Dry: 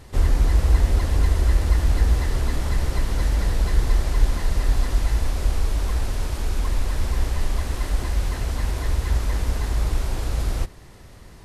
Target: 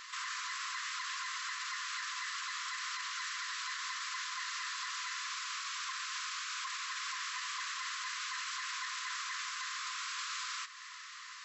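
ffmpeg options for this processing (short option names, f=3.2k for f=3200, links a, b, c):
-filter_complex "[0:a]asplit=2[a][b];[b]acompressor=threshold=-27dB:ratio=16,volume=2dB[c];[a][c]amix=inputs=2:normalize=0,afftfilt=real='re*between(b*sr/4096,1000,7800)':imag='im*between(b*sr/4096,1000,7800)':win_size=4096:overlap=0.75,alimiter=level_in=7dB:limit=-24dB:level=0:latency=1:release=24,volume=-7dB"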